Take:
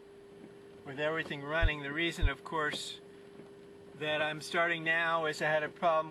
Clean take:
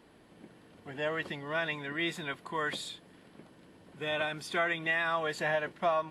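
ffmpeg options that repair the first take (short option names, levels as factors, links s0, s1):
-filter_complex "[0:a]bandreject=f=400:w=30,asplit=3[s0][s1][s2];[s0]afade=t=out:st=1.61:d=0.02[s3];[s1]highpass=f=140:w=0.5412,highpass=f=140:w=1.3066,afade=t=in:st=1.61:d=0.02,afade=t=out:st=1.73:d=0.02[s4];[s2]afade=t=in:st=1.73:d=0.02[s5];[s3][s4][s5]amix=inputs=3:normalize=0,asplit=3[s6][s7][s8];[s6]afade=t=out:st=2.21:d=0.02[s9];[s7]highpass=f=140:w=0.5412,highpass=f=140:w=1.3066,afade=t=in:st=2.21:d=0.02,afade=t=out:st=2.33:d=0.02[s10];[s8]afade=t=in:st=2.33:d=0.02[s11];[s9][s10][s11]amix=inputs=3:normalize=0"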